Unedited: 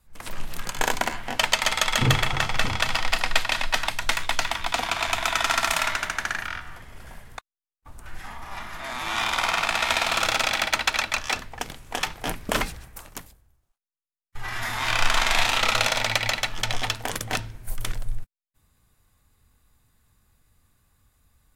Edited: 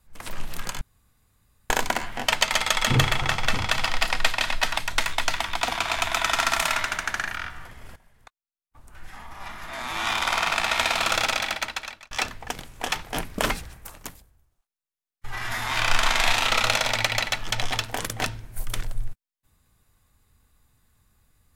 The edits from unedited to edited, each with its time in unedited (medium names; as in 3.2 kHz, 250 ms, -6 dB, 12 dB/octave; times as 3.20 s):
0.81 s: insert room tone 0.89 s
7.07–9.04 s: fade in, from -19 dB
10.32–11.22 s: fade out linear